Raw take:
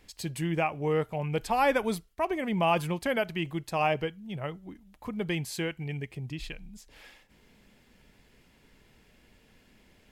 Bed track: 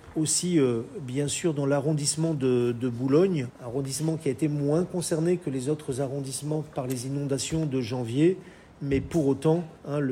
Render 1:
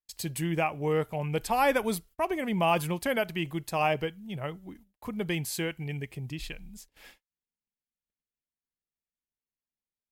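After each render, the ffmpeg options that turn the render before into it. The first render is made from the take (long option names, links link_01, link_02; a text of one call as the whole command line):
ffmpeg -i in.wav -af "agate=range=-44dB:threshold=-52dB:ratio=16:detection=peak,highshelf=frequency=10000:gain=12" out.wav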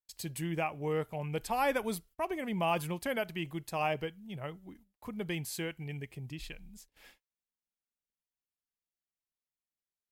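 ffmpeg -i in.wav -af "volume=-5.5dB" out.wav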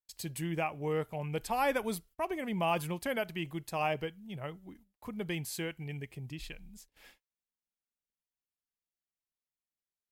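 ffmpeg -i in.wav -af anull out.wav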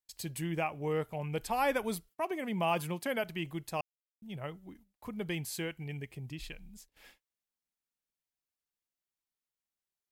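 ffmpeg -i in.wav -filter_complex "[0:a]asettb=1/sr,asplit=3[link_01][link_02][link_03];[link_01]atrim=end=2.104[link_04];[link_02]atrim=start=2.1:end=3.24,asetpts=PTS-STARTPTS,afade=type=in:duration=0.004:curve=qsin,afade=type=out:start_time=1.136:duration=0.004:curve=qsin,highpass=frequency=120:width=0.5412,highpass=frequency=120:width=1.3066[link_05];[link_03]atrim=start=3.236[link_06];[link_04][link_05]acrossfade=duration=0.004:curve1=hsin:curve2=qsin[link_07];[link_07][link_06]acrossfade=duration=0.004:curve1=qsin:curve2=hsin,asplit=3[link_08][link_09][link_10];[link_08]atrim=end=3.81,asetpts=PTS-STARTPTS,afade=type=out:start_time=3.806:duration=0.004:curve=hsin[link_11];[link_09]atrim=start=3.81:end=4.22,asetpts=PTS-STARTPTS,volume=0[link_12];[link_10]atrim=start=4.22,asetpts=PTS-STARTPTS,afade=type=in:duration=0.004:curve=hsin[link_13];[link_11][link_12][link_13]concat=n=3:v=0:a=1" out.wav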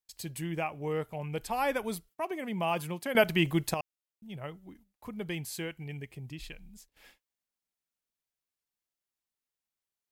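ffmpeg -i in.wav -filter_complex "[0:a]asplit=3[link_01][link_02][link_03];[link_01]atrim=end=3.152[link_04];[link_02]atrim=start=3.148:end=3.742,asetpts=PTS-STARTPTS,volume=11dB[link_05];[link_03]atrim=start=3.738[link_06];[link_04][link_05]acrossfade=duration=0.004:curve1=hsin:curve2=hsin[link_07];[link_07][link_06]acrossfade=duration=0.004:curve1=hsin:curve2=hsin" out.wav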